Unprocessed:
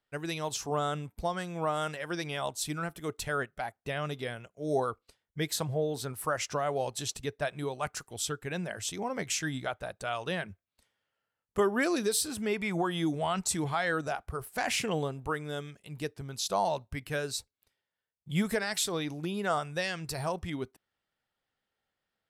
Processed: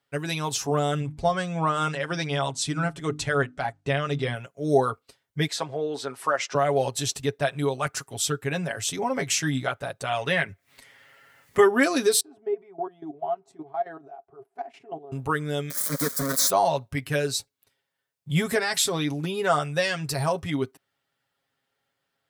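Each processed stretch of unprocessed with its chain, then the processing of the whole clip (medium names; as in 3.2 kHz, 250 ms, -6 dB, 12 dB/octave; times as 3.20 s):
1.00–4.35 s: low-pass 8.5 kHz 24 dB/octave + bass shelf 160 Hz +6 dB + hum notches 50/100/150/200/250/300 Hz
5.47–6.55 s: high-pass 350 Hz + distance through air 84 m + tape noise reduction on one side only encoder only
10.17–11.68 s: peaking EQ 2 kHz +11 dB 0.42 oct + upward compressor, threshold -45 dBFS
12.20–15.12 s: level held to a coarse grid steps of 15 dB + two resonant band-passes 520 Hz, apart 0.8 oct
15.70–16.50 s: zero-crossing glitches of -38.5 dBFS + companded quantiser 2-bit + static phaser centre 550 Hz, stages 8
whole clip: high-pass 65 Hz; comb 7.3 ms, depth 68%; trim +5.5 dB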